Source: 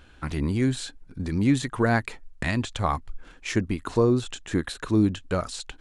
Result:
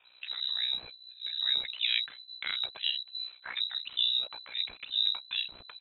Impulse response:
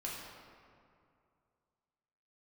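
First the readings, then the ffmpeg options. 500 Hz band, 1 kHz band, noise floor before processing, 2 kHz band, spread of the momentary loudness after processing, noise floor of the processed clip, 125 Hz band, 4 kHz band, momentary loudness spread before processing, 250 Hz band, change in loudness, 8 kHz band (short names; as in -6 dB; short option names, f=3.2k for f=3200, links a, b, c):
-31.0 dB, -20.0 dB, -52 dBFS, -7.0 dB, 10 LU, -58 dBFS, under -40 dB, +11.5 dB, 11 LU, under -40 dB, -4.5 dB, under -40 dB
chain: -filter_complex "[0:a]acrossover=split=310[a][b];[a]adelay=40[c];[c][b]amix=inputs=2:normalize=0,lowpass=f=3.4k:t=q:w=0.5098,lowpass=f=3.4k:t=q:w=0.6013,lowpass=f=3.4k:t=q:w=0.9,lowpass=f=3.4k:t=q:w=2.563,afreqshift=-4000,aeval=exprs='val(0)*sin(2*PI*31*n/s)':c=same,volume=-4dB"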